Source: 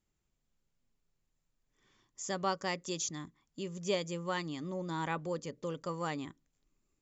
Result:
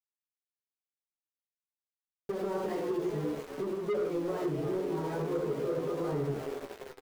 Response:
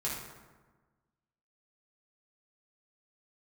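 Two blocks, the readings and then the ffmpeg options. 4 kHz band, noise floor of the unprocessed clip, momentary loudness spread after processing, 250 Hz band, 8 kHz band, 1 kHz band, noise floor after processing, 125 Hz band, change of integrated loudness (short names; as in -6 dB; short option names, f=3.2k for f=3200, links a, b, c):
-9.0 dB, -82 dBFS, 6 LU, +5.5 dB, n/a, -2.0 dB, under -85 dBFS, +4.0 dB, +3.5 dB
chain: -filter_complex "[0:a]lowpass=2.6k,tiltshelf=f=970:g=7.5[a];[1:a]atrim=start_sample=2205,afade=t=out:st=0.22:d=0.01,atrim=end_sample=10143[b];[a][b]afir=irnorm=-1:irlink=0,alimiter=limit=-21dB:level=0:latency=1:release=53,asplit=9[c][d][e][f][g][h][i][j][k];[d]adelay=343,afreqshift=120,volume=-11dB[l];[e]adelay=686,afreqshift=240,volume=-15dB[m];[f]adelay=1029,afreqshift=360,volume=-19dB[n];[g]adelay=1372,afreqshift=480,volume=-23dB[o];[h]adelay=1715,afreqshift=600,volume=-27.1dB[p];[i]adelay=2058,afreqshift=720,volume=-31.1dB[q];[j]adelay=2401,afreqshift=840,volume=-35.1dB[r];[k]adelay=2744,afreqshift=960,volume=-39.1dB[s];[c][l][m][n][o][p][q][r][s]amix=inputs=9:normalize=0,aeval=exprs='val(0)*gte(abs(val(0)),0.0141)':c=same,flanger=delay=6.4:depth=4.5:regen=72:speed=0.49:shape=triangular,equalizer=f=420:t=o:w=0.61:g=13.5,asoftclip=type=tanh:threshold=-23.5dB,acompressor=threshold=-30dB:ratio=6,asplit=2[t][u];[u]adelay=14,volume=-7.5dB[v];[t][v]amix=inputs=2:normalize=0"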